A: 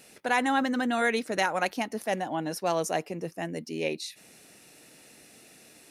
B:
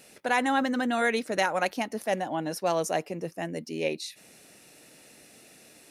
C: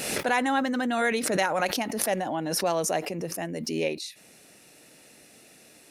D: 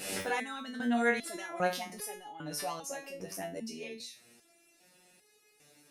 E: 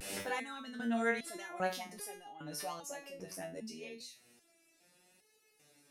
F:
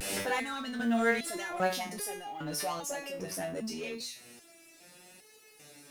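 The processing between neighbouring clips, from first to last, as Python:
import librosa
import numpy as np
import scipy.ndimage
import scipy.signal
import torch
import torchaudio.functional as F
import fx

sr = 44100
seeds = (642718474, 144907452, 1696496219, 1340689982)

y1 = fx.peak_eq(x, sr, hz=570.0, db=3.0, octaves=0.28)
y2 = fx.pre_swell(y1, sr, db_per_s=36.0)
y3 = fx.resonator_held(y2, sr, hz=2.5, low_hz=96.0, high_hz=420.0)
y3 = y3 * 10.0 ** (2.5 / 20.0)
y4 = fx.vibrato(y3, sr, rate_hz=0.79, depth_cents=49.0)
y4 = y4 * 10.0 ** (-4.5 / 20.0)
y5 = fx.law_mismatch(y4, sr, coded='mu')
y5 = y5 * 10.0 ** (4.0 / 20.0)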